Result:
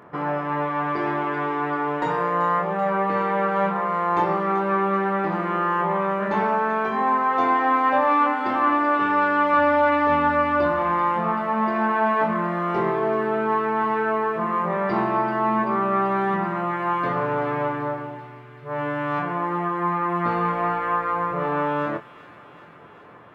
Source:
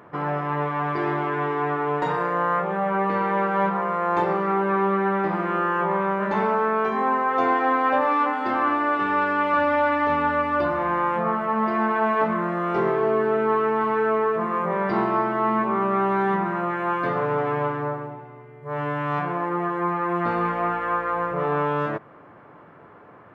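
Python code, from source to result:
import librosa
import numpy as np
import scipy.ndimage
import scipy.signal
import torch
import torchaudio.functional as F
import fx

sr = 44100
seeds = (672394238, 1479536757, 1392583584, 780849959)

y = fx.doubler(x, sr, ms=24.0, db=-8.5)
y = fx.echo_wet_highpass(y, sr, ms=385, feedback_pct=72, hz=2900.0, wet_db=-9)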